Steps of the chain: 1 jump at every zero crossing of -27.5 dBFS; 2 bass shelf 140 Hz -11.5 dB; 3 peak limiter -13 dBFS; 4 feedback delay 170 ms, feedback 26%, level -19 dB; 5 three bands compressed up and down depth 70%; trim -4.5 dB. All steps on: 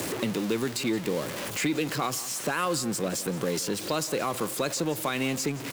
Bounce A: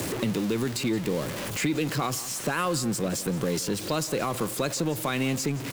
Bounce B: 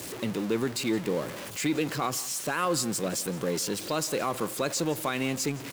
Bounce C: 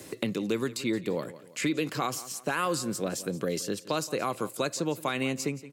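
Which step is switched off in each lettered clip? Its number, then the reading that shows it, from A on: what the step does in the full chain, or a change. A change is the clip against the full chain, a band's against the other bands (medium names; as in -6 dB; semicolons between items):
2, 125 Hz band +5.0 dB; 5, crest factor change -3.5 dB; 1, distortion -13 dB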